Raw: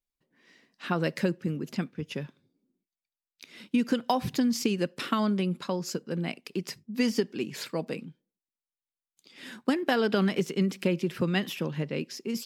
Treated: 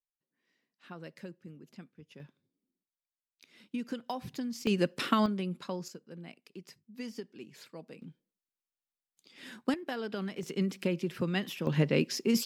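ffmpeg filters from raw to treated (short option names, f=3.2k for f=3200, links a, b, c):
-af "asetnsamples=n=441:p=0,asendcmd='2.2 volume volume -11dB;4.67 volume volume 0.5dB;5.26 volume volume -6.5dB;5.88 volume volume -15dB;8.02 volume volume -4dB;9.74 volume volume -11.5dB;10.43 volume volume -4.5dB;11.67 volume volume 5dB',volume=-18dB"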